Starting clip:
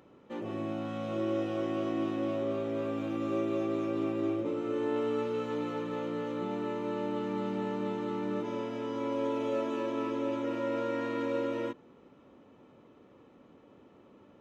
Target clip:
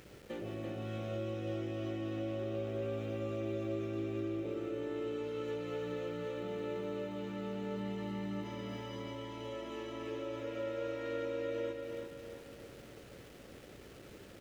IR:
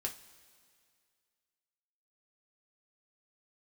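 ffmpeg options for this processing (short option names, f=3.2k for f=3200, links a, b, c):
-filter_complex "[0:a]aeval=exprs='val(0)*gte(abs(val(0)),0.00126)':c=same,acompressor=threshold=-44dB:ratio=4,equalizer=f=100:t=o:w=0.67:g=3,equalizer=f=250:t=o:w=0.67:g=-8,equalizer=f=1k:t=o:w=0.67:g=-12,aeval=exprs='val(0)+0.000282*(sin(2*PI*60*n/s)+sin(2*PI*2*60*n/s)/2+sin(2*PI*3*60*n/s)/3+sin(2*PI*4*60*n/s)/4+sin(2*PI*5*60*n/s)/5)':c=same,asettb=1/sr,asplit=3[a][b][c];[a]atrim=end=7.764[d];[b]atrim=start=7.76:end=10.08,asetpts=PTS-STARTPTS,afade=t=in:d=0.004:c=qsin,afade=t=out:st=2.316:d=0.004:c=qsin,aecho=1:1:1:0.51,atrim=end_sample=102312[e];[c]atrim=start=10.076[f];[d][e]acrossfade=d=0.004:c1=hsin:c2=qsin[g];[g][f]acrossfade=d=0.004:c1=qsin:c2=hsin,aecho=1:1:337|674|1011|1348|1685|2022:0.596|0.28|0.132|0.0618|0.0291|0.0137,volume=7dB"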